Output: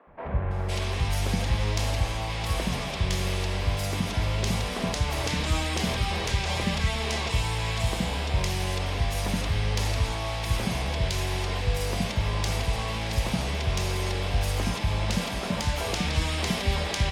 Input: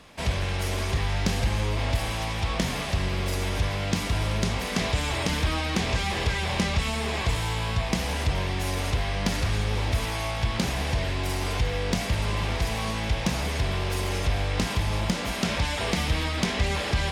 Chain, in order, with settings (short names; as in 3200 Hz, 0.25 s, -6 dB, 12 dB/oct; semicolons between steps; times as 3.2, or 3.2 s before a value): three bands offset in time mids, lows, highs 70/510 ms, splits 290/1600 Hz